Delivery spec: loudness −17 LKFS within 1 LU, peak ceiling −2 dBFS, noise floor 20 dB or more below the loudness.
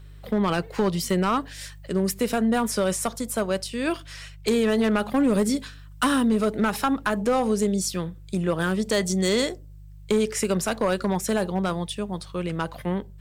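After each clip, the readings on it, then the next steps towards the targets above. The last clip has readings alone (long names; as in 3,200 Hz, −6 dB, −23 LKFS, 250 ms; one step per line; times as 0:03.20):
share of clipped samples 1.2%; peaks flattened at −15.0 dBFS; mains hum 50 Hz; hum harmonics up to 150 Hz; level of the hum −42 dBFS; integrated loudness −25.0 LKFS; sample peak −15.0 dBFS; target loudness −17.0 LKFS
→ clipped peaks rebuilt −15 dBFS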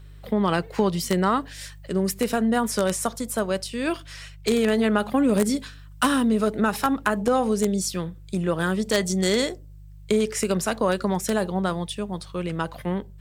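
share of clipped samples 0.0%; mains hum 50 Hz; hum harmonics up to 150 Hz; level of the hum −41 dBFS
→ hum removal 50 Hz, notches 3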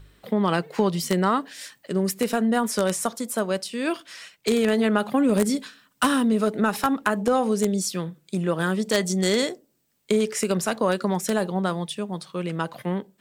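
mains hum none found; integrated loudness −24.5 LKFS; sample peak −6.0 dBFS; target loudness −17.0 LKFS
→ level +7.5 dB
brickwall limiter −2 dBFS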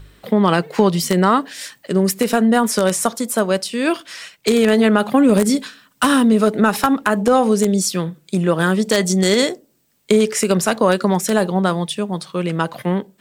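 integrated loudness −17.0 LKFS; sample peak −2.0 dBFS; background noise floor −60 dBFS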